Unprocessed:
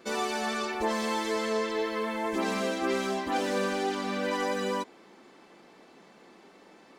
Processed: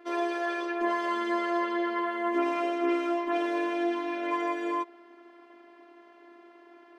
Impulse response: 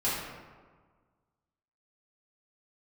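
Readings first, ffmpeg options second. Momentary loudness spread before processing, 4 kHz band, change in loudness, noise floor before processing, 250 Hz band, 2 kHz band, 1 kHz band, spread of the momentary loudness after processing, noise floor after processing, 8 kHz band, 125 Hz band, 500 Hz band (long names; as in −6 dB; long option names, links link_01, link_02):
2 LU, −7.0 dB, +0.5 dB, −56 dBFS, +3.0 dB, −0.5 dB, +1.5 dB, 3 LU, −55 dBFS, below −10 dB, can't be measured, −0.5 dB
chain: -filter_complex "[0:a]afftfilt=real='hypot(re,im)*cos(PI*b)':imag='0':win_size=512:overlap=0.75,acrossover=split=200 2800:gain=0.112 1 0.112[link_01][link_02][link_03];[link_01][link_02][link_03]amix=inputs=3:normalize=0,volume=5.5dB"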